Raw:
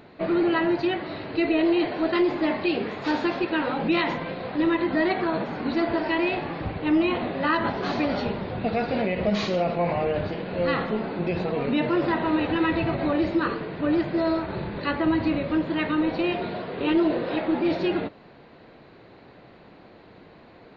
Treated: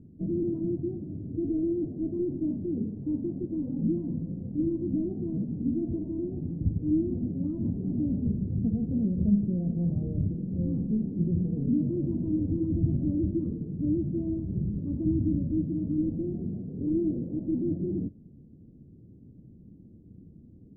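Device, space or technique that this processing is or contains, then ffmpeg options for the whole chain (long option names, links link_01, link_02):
the neighbour's flat through the wall: -af "lowpass=frequency=250:width=0.5412,lowpass=frequency=250:width=1.3066,equalizer=frequency=86:width_type=o:width=0.43:gain=4.5,volume=4dB"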